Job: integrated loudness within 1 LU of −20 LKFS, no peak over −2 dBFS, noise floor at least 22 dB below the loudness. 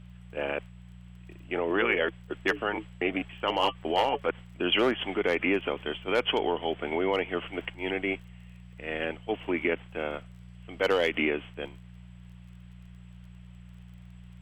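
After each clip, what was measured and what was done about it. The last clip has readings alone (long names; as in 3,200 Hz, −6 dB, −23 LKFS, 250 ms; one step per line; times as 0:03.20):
crackle rate 24 per second; mains hum 60 Hz; hum harmonics up to 180 Hz; level of the hum −45 dBFS; integrated loudness −29.0 LKFS; sample peak −13.0 dBFS; target loudness −20.0 LKFS
→ click removal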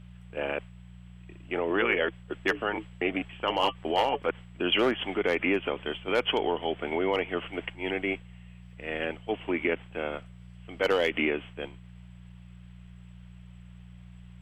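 crackle rate 0 per second; mains hum 60 Hz; hum harmonics up to 180 Hz; level of the hum −45 dBFS
→ hum removal 60 Hz, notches 3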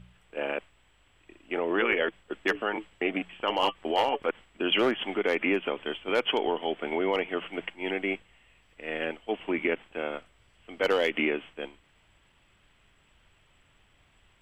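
mains hum none found; integrated loudness −29.5 LKFS; sample peak −13.0 dBFS; target loudness −20.0 LKFS
→ level +9.5 dB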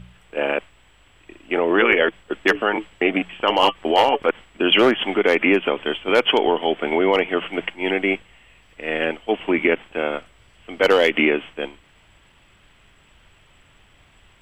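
integrated loudness −20.0 LKFS; sample peak −3.5 dBFS; background noise floor −55 dBFS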